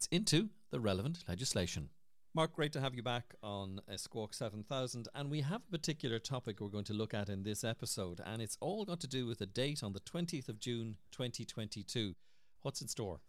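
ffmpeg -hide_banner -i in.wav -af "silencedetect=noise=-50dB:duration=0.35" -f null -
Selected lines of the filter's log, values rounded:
silence_start: 1.87
silence_end: 2.35 | silence_duration: 0.48
silence_start: 12.13
silence_end: 12.65 | silence_duration: 0.52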